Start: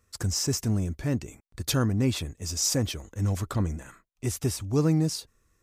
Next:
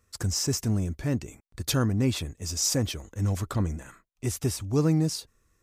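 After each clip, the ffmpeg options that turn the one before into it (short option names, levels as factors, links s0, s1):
-af anull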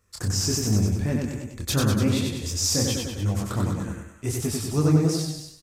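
-filter_complex "[0:a]asplit=2[s0][s1];[s1]aecho=0:1:199|302:0.376|0.126[s2];[s0][s2]amix=inputs=2:normalize=0,flanger=delay=19:depth=7.7:speed=2.7,asplit=2[s3][s4];[s4]aecho=0:1:94|188|282|376:0.708|0.205|0.0595|0.0173[s5];[s3][s5]amix=inputs=2:normalize=0,volume=1.58"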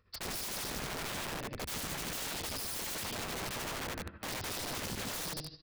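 -af "aresample=11025,volume=10.6,asoftclip=hard,volume=0.0944,aresample=44100,tremolo=f=13:d=0.63,aeval=exprs='(mod(56.2*val(0)+1,2)-1)/56.2':c=same,volume=1.12"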